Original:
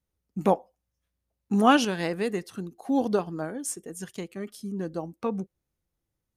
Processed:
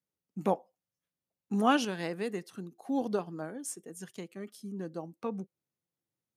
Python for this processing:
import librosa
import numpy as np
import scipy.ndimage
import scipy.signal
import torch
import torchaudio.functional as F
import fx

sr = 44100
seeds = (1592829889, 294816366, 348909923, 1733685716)

y = scipy.signal.sosfilt(scipy.signal.butter(4, 120.0, 'highpass', fs=sr, output='sos'), x)
y = y * librosa.db_to_amplitude(-6.5)